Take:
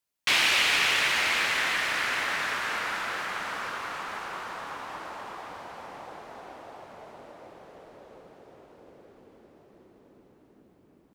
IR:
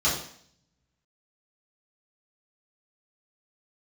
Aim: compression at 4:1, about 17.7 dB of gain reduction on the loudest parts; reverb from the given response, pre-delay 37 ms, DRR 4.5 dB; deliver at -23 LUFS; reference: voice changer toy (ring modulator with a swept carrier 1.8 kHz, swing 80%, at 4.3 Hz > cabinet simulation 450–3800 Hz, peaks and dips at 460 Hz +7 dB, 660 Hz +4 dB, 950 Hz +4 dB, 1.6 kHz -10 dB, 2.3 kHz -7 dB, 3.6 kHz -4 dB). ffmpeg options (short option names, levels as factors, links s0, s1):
-filter_complex "[0:a]acompressor=threshold=0.00794:ratio=4,asplit=2[s0][s1];[1:a]atrim=start_sample=2205,adelay=37[s2];[s1][s2]afir=irnorm=-1:irlink=0,volume=0.133[s3];[s0][s3]amix=inputs=2:normalize=0,aeval=exprs='val(0)*sin(2*PI*1800*n/s+1800*0.8/4.3*sin(2*PI*4.3*n/s))':c=same,highpass=450,equalizer=f=460:t=q:w=4:g=7,equalizer=f=660:t=q:w=4:g=4,equalizer=f=950:t=q:w=4:g=4,equalizer=f=1600:t=q:w=4:g=-10,equalizer=f=2300:t=q:w=4:g=-7,equalizer=f=3600:t=q:w=4:g=-4,lowpass=f=3800:w=0.5412,lowpass=f=3800:w=1.3066,volume=17.8"